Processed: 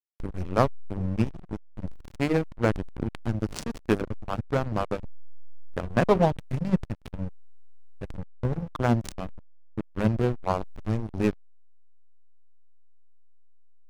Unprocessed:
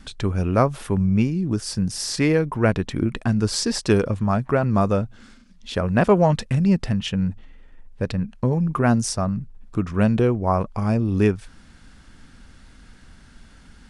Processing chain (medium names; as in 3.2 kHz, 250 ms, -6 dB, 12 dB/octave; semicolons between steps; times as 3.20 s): hum notches 50/100/150/200/250/300/350/400/450 Hz; power-law waveshaper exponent 1.4; hysteresis with a dead band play -18.5 dBFS